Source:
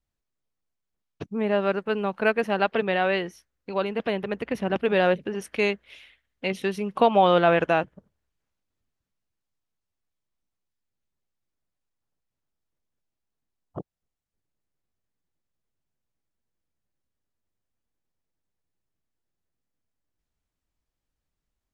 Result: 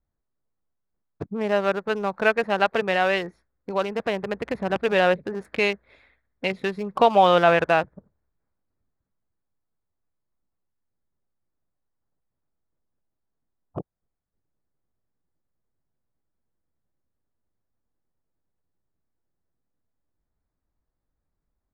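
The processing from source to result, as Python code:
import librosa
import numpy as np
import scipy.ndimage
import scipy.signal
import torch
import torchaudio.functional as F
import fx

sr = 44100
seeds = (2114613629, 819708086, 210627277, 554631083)

y = fx.wiener(x, sr, points=15)
y = fx.dynamic_eq(y, sr, hz=260.0, q=0.88, threshold_db=-35.0, ratio=4.0, max_db=-7)
y = y * 10.0 ** (4.0 / 20.0)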